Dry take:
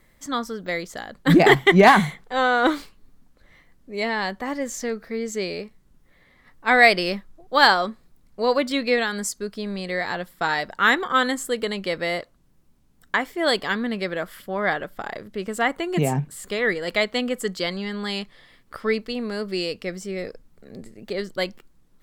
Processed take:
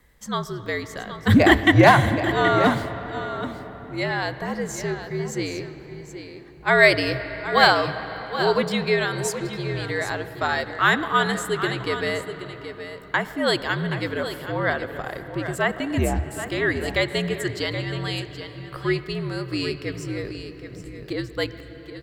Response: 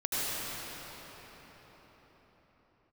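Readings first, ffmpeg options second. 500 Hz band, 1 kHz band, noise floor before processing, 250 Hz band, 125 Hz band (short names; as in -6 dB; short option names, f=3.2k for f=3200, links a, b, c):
0.0 dB, -1.0 dB, -58 dBFS, +0.5 dB, +4.5 dB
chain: -filter_complex "[0:a]afreqshift=-69,aecho=1:1:774:0.282,asplit=2[a][b];[1:a]atrim=start_sample=2205,lowpass=4.2k[c];[b][c]afir=irnorm=-1:irlink=0,volume=-21dB[d];[a][d]amix=inputs=2:normalize=0,volume=-1dB"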